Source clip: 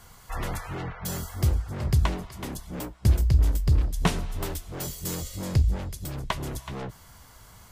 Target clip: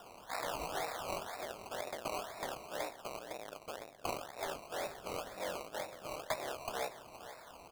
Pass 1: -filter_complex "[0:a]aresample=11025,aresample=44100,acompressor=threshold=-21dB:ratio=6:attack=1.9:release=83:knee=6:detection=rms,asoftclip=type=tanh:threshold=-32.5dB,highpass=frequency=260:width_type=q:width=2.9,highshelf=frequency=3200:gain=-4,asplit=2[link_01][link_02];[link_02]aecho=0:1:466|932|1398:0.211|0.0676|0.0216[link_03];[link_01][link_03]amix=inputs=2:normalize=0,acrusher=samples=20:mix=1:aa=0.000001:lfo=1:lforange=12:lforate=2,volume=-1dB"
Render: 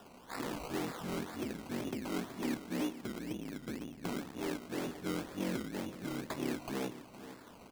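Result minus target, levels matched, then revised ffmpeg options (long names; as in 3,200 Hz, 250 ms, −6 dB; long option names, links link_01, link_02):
250 Hz band +13.5 dB; downward compressor: peak gain reduction +8.5 dB
-filter_complex "[0:a]aresample=11025,aresample=44100,asoftclip=type=tanh:threshold=-32.5dB,highpass=frequency=630:width_type=q:width=2.9,highshelf=frequency=3200:gain=-4,asplit=2[link_01][link_02];[link_02]aecho=0:1:466|932|1398:0.211|0.0676|0.0216[link_03];[link_01][link_03]amix=inputs=2:normalize=0,acrusher=samples=20:mix=1:aa=0.000001:lfo=1:lforange=12:lforate=2,volume=-1dB"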